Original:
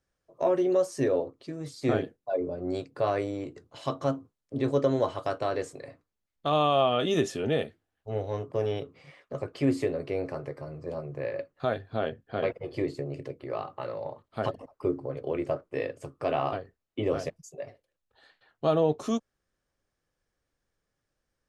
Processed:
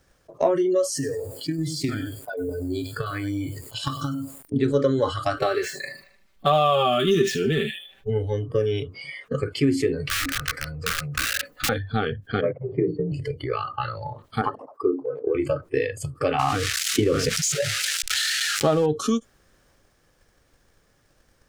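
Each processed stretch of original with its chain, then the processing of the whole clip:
0:00.86–0:04.56: downward compressor 8 to 1, threshold −30 dBFS + feedback echo at a low word length 99 ms, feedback 35%, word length 9 bits, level −8 dB
0:05.36–0:08.10: running median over 5 samples + comb filter 5.2 ms, depth 77% + delay with a high-pass on its return 76 ms, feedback 38%, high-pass 1,700 Hz, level −9 dB
0:10.06–0:11.69: comb filter 4 ms, depth 63% + wrap-around overflow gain 29 dB
0:12.41–0:13.12: low-pass filter 1,100 Hz + frequency shifter +29 Hz
0:14.41–0:15.35: high-pass filter 280 Hz + high shelf with overshoot 1,600 Hz −10 dB, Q 1.5
0:16.39–0:18.86: spike at every zero crossing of −27.5 dBFS + high-frequency loss of the air 80 metres + envelope flattener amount 50%
whole clip: transient designer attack +8 dB, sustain +3 dB; noise reduction from a noise print of the clip's start 21 dB; envelope flattener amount 50%; level −1 dB

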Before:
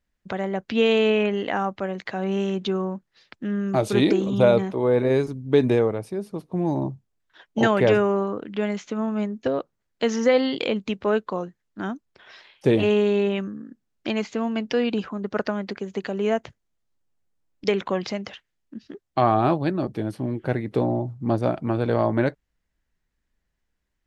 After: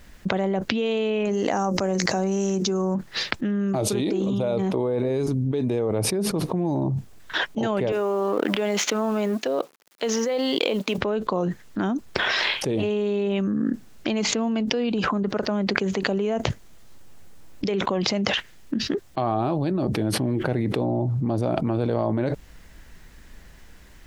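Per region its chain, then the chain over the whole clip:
0:01.25–0:02.95: high shelf with overshoot 4,400 Hz +9.5 dB, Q 3 + mains-hum notches 60/120/180/240/300/360/420/480/540 Hz
0:07.92–0:10.98: mu-law and A-law mismatch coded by A + high-pass filter 330 Hz
whole clip: dynamic equaliser 1,700 Hz, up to −7 dB, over −41 dBFS, Q 1.3; envelope flattener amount 100%; level −10 dB

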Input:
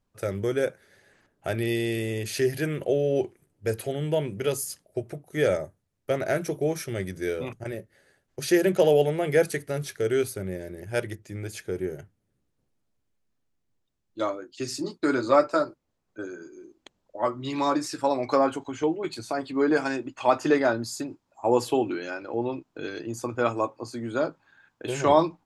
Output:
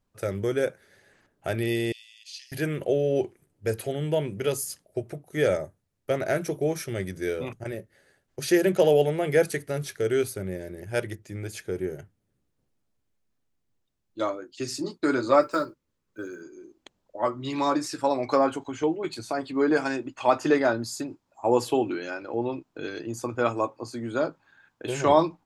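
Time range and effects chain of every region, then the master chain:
0:01.92–0:02.52: flat-topped band-pass 3,800 Hz, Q 1.4 + first difference + double-tracking delay 41 ms −13 dB
0:15.42–0:16.43: one scale factor per block 7 bits + parametric band 720 Hz −15 dB 0.32 octaves
whole clip: no processing

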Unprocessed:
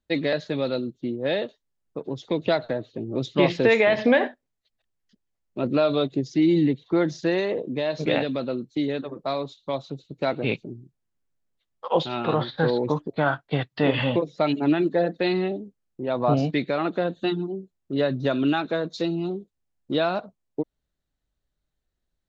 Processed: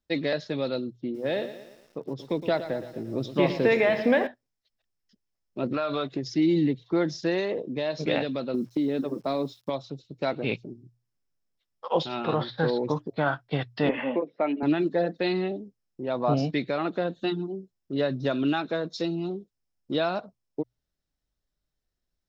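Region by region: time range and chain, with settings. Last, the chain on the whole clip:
0:00.96–0:04.27: low-pass filter 3,000 Hz 6 dB per octave + feedback echo at a low word length 115 ms, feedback 55%, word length 8 bits, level −12 dB
0:05.71–0:06.35: parametric band 1,500 Hz +13 dB 1.8 octaves + downward compressor, threshold −21 dBFS
0:08.54–0:09.70: parametric band 270 Hz +9.5 dB 1.9 octaves + downward compressor, threshold −19 dBFS + bit-depth reduction 10 bits, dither none
0:13.89–0:14.63: Chebyshev band-pass filter 230–2,300 Hz, order 3 + notch filter 1,300 Hz, Q 24
whole clip: parametric band 5,300 Hz +11 dB 0.2 octaves; mains-hum notches 60/120 Hz; level −3 dB

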